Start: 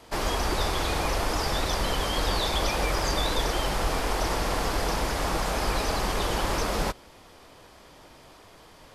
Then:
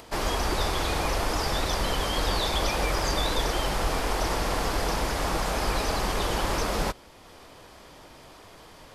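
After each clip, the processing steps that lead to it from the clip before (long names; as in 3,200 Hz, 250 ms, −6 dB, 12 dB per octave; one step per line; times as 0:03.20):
upward compression, threshold −43 dBFS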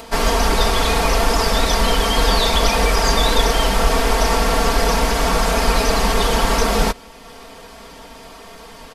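comb filter 4.4 ms, depth 99%
level +7 dB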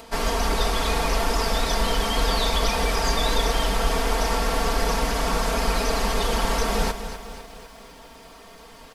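feedback echo at a low word length 251 ms, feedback 55%, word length 7 bits, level −11 dB
level −7 dB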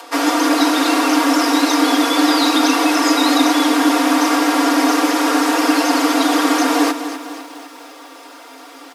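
frequency shifter +260 Hz
level +7 dB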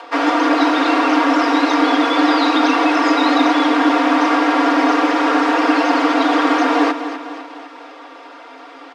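band-pass filter 280–2,900 Hz
level +2 dB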